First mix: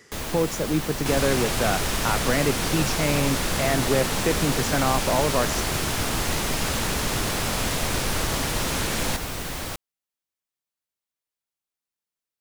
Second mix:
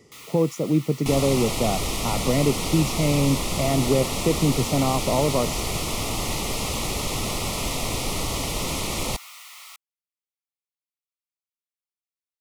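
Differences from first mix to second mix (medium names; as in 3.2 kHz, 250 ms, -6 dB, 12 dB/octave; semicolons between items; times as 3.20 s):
speech: add tilt shelf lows +5.5 dB, about 650 Hz; first sound: add ladder high-pass 1.2 kHz, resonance 45%; master: add Butterworth band-stop 1.6 kHz, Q 2.2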